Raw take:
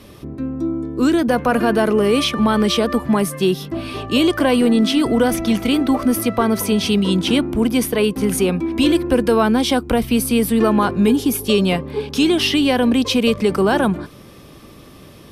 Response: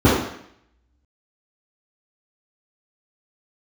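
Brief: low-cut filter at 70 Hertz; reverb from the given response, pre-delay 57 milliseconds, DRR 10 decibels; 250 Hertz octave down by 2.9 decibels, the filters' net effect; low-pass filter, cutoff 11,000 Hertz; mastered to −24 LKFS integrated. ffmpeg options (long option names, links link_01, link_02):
-filter_complex "[0:a]highpass=70,lowpass=11000,equalizer=frequency=250:width_type=o:gain=-3.5,asplit=2[link_01][link_02];[1:a]atrim=start_sample=2205,adelay=57[link_03];[link_02][link_03]afir=irnorm=-1:irlink=0,volume=-35dB[link_04];[link_01][link_04]amix=inputs=2:normalize=0,volume=-7dB"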